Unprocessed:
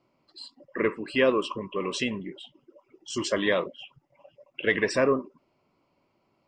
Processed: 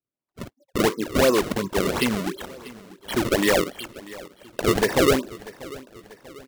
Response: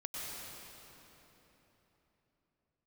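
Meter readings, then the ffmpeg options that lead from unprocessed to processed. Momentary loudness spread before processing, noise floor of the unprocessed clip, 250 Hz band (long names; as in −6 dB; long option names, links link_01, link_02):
21 LU, −72 dBFS, +6.5 dB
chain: -filter_complex "[0:a]afftdn=noise_reduction=22:noise_floor=-37,acrossover=split=6300[link_01][link_02];[link_02]acompressor=threshold=-58dB:ratio=4:attack=1:release=60[link_03];[link_01][link_03]amix=inputs=2:normalize=0,agate=range=-14dB:threshold=-51dB:ratio=16:detection=peak,highpass=frequency=62:width=0.5412,highpass=frequency=62:width=1.3066,asplit=2[link_04][link_05];[link_05]acompressor=threshold=-33dB:ratio=5,volume=0.5dB[link_06];[link_04][link_06]amix=inputs=2:normalize=0,acrusher=samples=31:mix=1:aa=0.000001:lfo=1:lforange=49.6:lforate=2.8,asoftclip=type=tanh:threshold=-15dB,aecho=1:1:640|1280|1920|2560:0.112|0.055|0.0269|0.0132,volume=4.5dB"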